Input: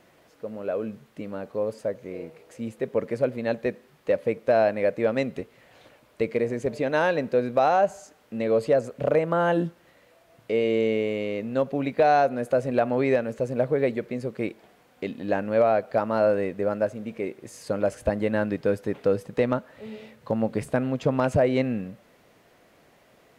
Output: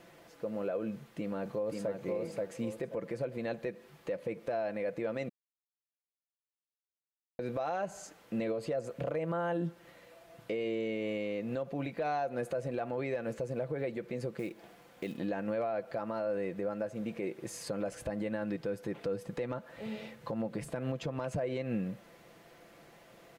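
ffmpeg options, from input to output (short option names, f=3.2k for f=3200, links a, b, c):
-filter_complex "[0:a]asplit=2[a][b];[b]afade=t=in:st=0.92:d=0.01,afade=t=out:st=1.94:d=0.01,aecho=0:1:530|1060|1590:0.630957|0.157739|0.0394348[c];[a][c]amix=inputs=2:normalize=0,asettb=1/sr,asplit=3[d][e][f];[d]atrim=end=14.394[g];[e]atrim=start=14.39:end=15.17,asetpts=PTS-STARTPTS,afade=t=in:d=0.004:c=qsin,afade=t=out:st=0.776:d=0.004:c=qsin,acrusher=bits=6:mode=log:mix=0:aa=0.000001[h];[f]atrim=start=15.166[i];[g][h]acrossfade=d=0.004:c1=hsin:c2=qsin[j];[j][i]acrossfade=d=0.004:c1=qsin:c2=hsin,asplit=3[k][l][m];[k]atrim=end=5.29,asetpts=PTS-STARTPTS,afade=t=out:st=5.286:d=0.004:c=hsin[n];[l]atrim=start=5.29:end=7.39,asetpts=PTS-STARTPTS,volume=0[o];[m]atrim=start=7.39,asetpts=PTS-STARTPTS,afade=t=in:d=0.004:c=hsin[p];[n][o][p]concat=n=3:v=0:a=1,aecho=1:1:5.9:0.46,acompressor=threshold=-32dB:ratio=1.5,alimiter=level_in=2dB:limit=-24dB:level=0:latency=1:release=135,volume=-2dB"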